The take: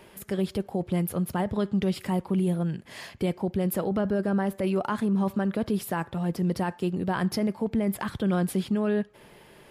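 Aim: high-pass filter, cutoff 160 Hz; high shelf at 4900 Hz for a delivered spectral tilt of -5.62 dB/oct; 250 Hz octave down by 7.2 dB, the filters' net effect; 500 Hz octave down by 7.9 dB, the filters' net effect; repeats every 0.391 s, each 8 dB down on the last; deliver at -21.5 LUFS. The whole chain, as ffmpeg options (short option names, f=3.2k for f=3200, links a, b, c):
-af "highpass=160,equalizer=f=250:t=o:g=-7,equalizer=f=500:t=o:g=-8,highshelf=f=4.9k:g=-6.5,aecho=1:1:391|782|1173|1564|1955:0.398|0.159|0.0637|0.0255|0.0102,volume=12.5dB"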